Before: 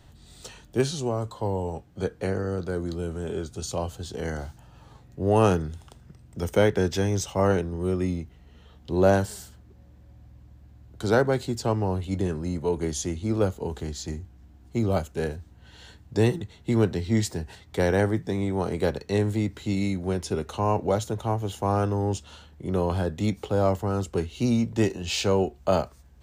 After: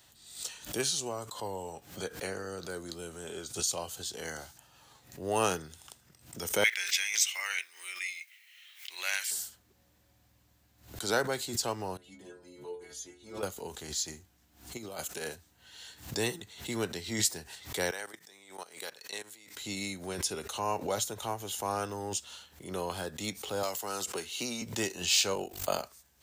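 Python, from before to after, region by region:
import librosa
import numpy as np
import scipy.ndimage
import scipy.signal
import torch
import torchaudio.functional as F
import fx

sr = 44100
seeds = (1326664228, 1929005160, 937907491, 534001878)

y = fx.chain(x, sr, fx.highpass_res(hz=2200.0, q=6.4),
    fx.quant_dither(seeds[0], bits=12, dither='none'), at=(6.64, 9.31))
y = fx.chain(y, sr, fx.highpass(hz=41.0, slope=12),
    fx.high_shelf(hz=3600.0, db=-9.0),
    fx.stiff_resonator(f0_hz=65.0, decay_s=0.59, stiffness=0.008), at=(11.97, 13.43))
y = fx.chain(y, sr, fx.highpass(hz=170.0, slope=6),
    fx.over_compress(threshold_db=-29.0, ratio=-0.5), at=(14.77, 15.35))
y = fx.chain(y, sr, fx.highpass(hz=1100.0, slope=6),
    fx.level_steps(step_db=17), at=(17.91, 19.56))
y = fx.chain(y, sr, fx.highpass(hz=340.0, slope=6),
    fx.band_squash(depth_pct=100), at=(23.63, 24.62))
y = fx.chain(y, sr, fx.high_shelf(hz=10000.0, db=6.0),
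    fx.ring_mod(carrier_hz=24.0), at=(25.34, 25.83))
y = fx.tilt_eq(y, sr, slope=4.0)
y = fx.pre_swell(y, sr, db_per_s=120.0)
y = y * 10.0 ** (-5.5 / 20.0)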